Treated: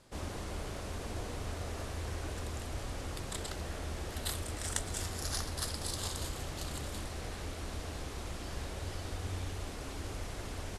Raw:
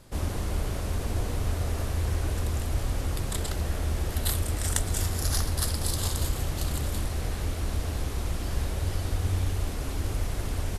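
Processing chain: LPF 9200 Hz 12 dB/oct; low shelf 170 Hz -9 dB; gain -5 dB

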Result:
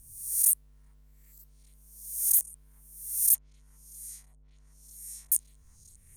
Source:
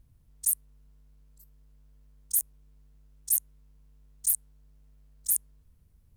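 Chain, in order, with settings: spectral swells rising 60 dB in 0.71 s; delay with a stepping band-pass 0.402 s, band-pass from 1100 Hz, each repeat 0.7 oct, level -10 dB; 3.34–5.32 treble ducked by the level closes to 650 Hz, closed at -21 dBFS

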